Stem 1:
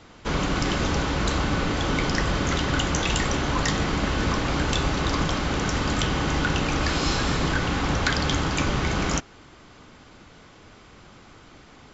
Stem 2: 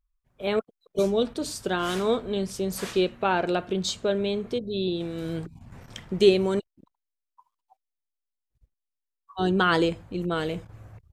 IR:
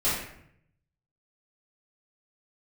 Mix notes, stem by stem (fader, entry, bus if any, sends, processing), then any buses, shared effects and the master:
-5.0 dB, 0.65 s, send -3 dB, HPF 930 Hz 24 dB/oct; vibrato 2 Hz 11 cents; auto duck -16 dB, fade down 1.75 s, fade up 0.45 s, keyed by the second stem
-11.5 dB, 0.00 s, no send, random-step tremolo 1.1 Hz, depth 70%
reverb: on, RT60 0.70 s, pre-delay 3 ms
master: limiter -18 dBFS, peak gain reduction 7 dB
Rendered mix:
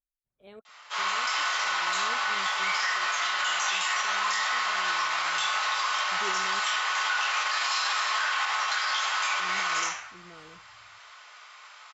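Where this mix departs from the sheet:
stem 1: missing vibrato 2 Hz 11 cents; stem 2 -11.5 dB -> -21.5 dB

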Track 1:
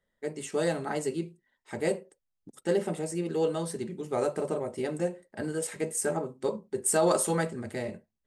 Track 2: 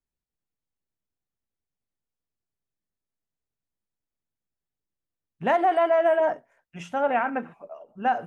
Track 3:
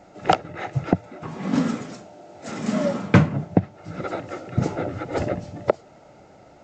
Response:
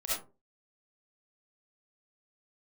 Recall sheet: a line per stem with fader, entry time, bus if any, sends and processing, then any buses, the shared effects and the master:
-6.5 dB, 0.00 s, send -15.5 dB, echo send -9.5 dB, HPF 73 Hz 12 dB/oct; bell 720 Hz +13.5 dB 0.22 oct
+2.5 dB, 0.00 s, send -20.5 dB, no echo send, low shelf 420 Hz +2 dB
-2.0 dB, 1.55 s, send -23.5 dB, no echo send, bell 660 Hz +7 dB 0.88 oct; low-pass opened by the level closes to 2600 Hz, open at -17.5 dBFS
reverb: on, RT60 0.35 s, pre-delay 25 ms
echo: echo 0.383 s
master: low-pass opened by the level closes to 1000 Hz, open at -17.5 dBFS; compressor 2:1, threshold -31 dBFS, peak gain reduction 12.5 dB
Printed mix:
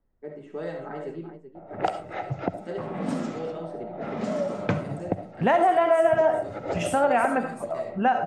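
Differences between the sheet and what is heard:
stem 1: missing bell 720 Hz +13.5 dB 0.22 oct; stem 2 +2.5 dB -> +14.0 dB; reverb return +9.5 dB

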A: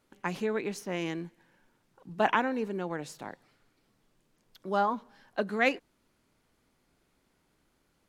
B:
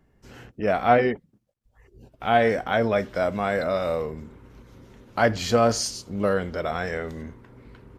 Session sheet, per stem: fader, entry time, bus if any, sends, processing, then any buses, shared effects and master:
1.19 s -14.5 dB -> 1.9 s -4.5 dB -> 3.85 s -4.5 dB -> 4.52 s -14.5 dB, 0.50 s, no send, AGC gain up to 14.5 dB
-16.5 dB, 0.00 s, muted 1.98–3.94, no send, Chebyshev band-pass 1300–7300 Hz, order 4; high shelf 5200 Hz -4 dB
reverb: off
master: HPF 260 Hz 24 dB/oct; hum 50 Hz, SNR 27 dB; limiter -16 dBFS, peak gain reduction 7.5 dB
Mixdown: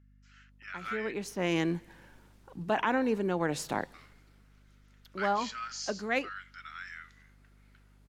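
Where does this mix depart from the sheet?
stem B -16.5 dB -> -9.0 dB; master: missing HPF 260 Hz 24 dB/oct

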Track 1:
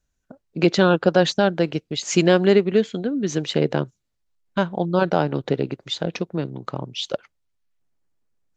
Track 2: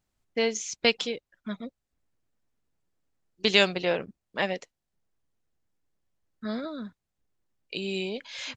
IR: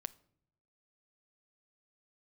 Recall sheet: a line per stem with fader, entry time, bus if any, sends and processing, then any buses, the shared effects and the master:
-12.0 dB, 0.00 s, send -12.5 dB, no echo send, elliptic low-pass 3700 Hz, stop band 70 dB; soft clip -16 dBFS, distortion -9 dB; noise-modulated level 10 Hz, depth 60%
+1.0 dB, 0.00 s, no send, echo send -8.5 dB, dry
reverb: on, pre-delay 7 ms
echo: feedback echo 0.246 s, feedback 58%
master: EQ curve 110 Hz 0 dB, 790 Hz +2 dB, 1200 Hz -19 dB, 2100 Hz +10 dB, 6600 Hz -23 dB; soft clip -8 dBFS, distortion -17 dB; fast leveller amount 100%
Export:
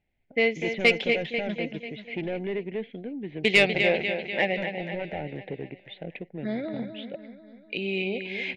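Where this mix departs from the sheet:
stem 1: missing noise-modulated level 10 Hz, depth 60%; master: missing fast leveller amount 100%

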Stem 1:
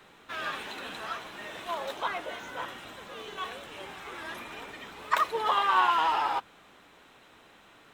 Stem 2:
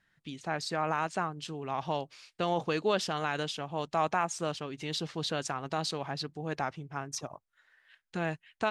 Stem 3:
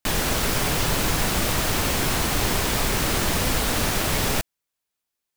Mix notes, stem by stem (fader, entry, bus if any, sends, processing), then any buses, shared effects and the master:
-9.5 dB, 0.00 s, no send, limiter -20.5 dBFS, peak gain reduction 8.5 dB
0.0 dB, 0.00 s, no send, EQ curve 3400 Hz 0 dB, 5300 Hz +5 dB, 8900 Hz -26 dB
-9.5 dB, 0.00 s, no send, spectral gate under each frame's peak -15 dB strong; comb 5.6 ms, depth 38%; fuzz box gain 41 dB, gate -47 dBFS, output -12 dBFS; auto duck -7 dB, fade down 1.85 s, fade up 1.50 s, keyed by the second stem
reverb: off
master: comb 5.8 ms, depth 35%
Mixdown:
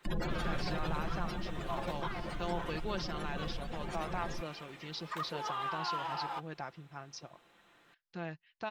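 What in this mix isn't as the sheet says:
stem 2 0.0 dB -> -10.0 dB; stem 3: missing fuzz box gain 41 dB, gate -47 dBFS, output -12 dBFS

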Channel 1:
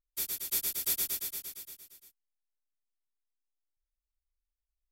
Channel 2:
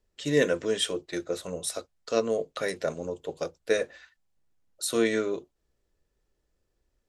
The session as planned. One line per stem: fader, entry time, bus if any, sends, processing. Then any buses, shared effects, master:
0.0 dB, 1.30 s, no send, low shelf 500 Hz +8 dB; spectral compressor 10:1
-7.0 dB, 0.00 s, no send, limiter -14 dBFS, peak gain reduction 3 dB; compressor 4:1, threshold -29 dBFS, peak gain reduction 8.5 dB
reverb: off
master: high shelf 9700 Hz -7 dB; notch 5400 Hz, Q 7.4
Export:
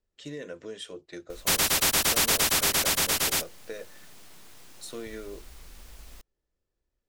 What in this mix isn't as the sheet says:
stem 1 0.0 dB -> +9.0 dB; master: missing notch 5400 Hz, Q 7.4

